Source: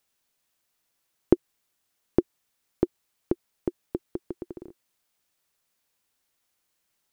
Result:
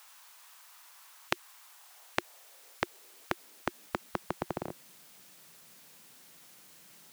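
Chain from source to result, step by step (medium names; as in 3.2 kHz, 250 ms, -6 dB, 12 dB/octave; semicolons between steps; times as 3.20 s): high-pass sweep 1 kHz -> 160 Hz, 1.60–4.46 s; spectrum-flattening compressor 10:1; trim +1 dB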